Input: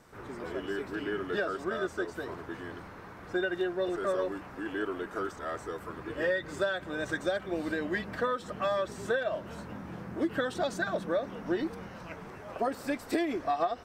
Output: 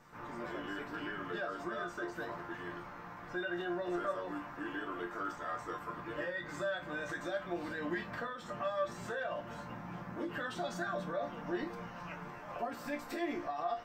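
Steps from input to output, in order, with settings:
graphic EQ with 15 bands 100 Hz −7 dB, 400 Hz −8 dB, 1,000 Hz +3 dB, 4,000 Hz −3 dB, 10,000 Hz −11 dB
brickwall limiter −29 dBFS, peak gain reduction 10.5 dB
resonators tuned to a chord A#2 major, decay 0.24 s
level +12 dB

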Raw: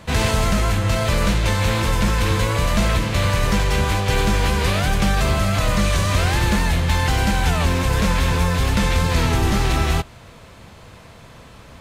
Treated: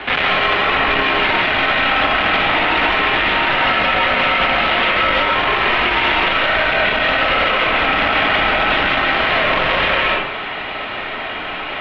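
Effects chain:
sub-octave generator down 1 octave, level +2 dB
high-frequency loss of the air 75 metres
hard clipping −19.5 dBFS, distortion −7 dB
single-sideband voice off tune −250 Hz 190–3,300 Hz
spectral tilt +4 dB per octave
comb and all-pass reverb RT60 0.45 s, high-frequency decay 0.65×, pre-delay 90 ms, DRR −3 dB
boost into a limiter +24 dB
level −6 dB

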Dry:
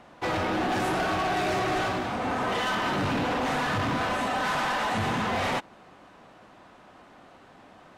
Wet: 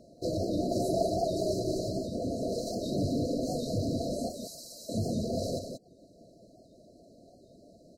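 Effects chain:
reverb reduction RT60 0.58 s
0:04.29–0:04.89: first-order pre-emphasis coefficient 0.9
brick-wall band-stop 710–3,900 Hz
0:00.71–0:01.44: parametric band 710 Hz +6 dB 0.77 octaves
single-tap delay 180 ms −7 dB
wow of a warped record 78 rpm, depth 100 cents

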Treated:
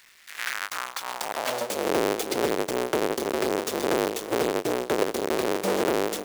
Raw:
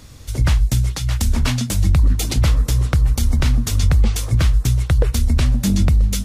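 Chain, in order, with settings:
each half-wave held at its own peak
high-pass filter sweep 1,900 Hz → 410 Hz, 0:00.37–0:01.93
surface crackle 420 per second −39 dBFS
level −9 dB

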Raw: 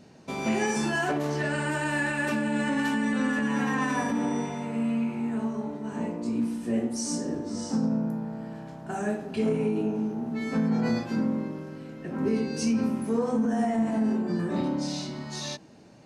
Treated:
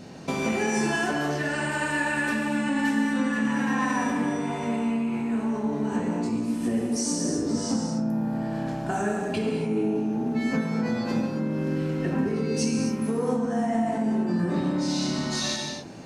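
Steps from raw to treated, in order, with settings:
downward compressor 6 to 1, threshold −34 dBFS, peak gain reduction 12 dB
reverb whose tail is shaped and stops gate 290 ms flat, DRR 1.5 dB
level +9 dB

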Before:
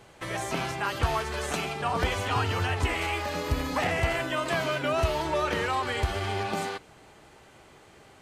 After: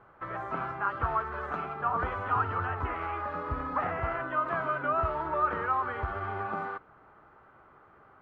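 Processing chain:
low-pass with resonance 1,300 Hz, resonance Q 4.3
level −7.5 dB

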